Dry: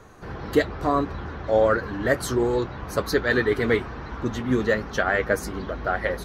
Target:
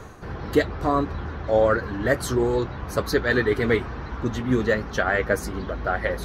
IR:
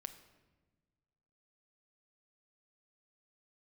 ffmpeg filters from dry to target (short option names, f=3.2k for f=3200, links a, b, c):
-af "areverse,acompressor=mode=upward:threshold=-31dB:ratio=2.5,areverse,equalizer=f=70:t=o:w=2.1:g=3.5"